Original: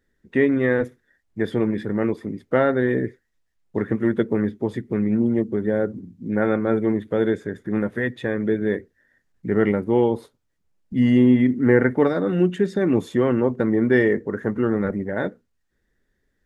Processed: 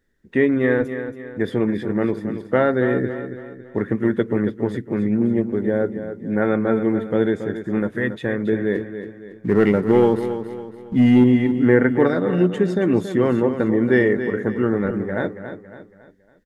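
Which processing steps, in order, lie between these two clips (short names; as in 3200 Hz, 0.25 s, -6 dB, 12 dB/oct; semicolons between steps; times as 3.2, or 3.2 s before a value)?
8.75–11.24 sample leveller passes 1; feedback echo 0.278 s, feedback 42%, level -10 dB; gain +1 dB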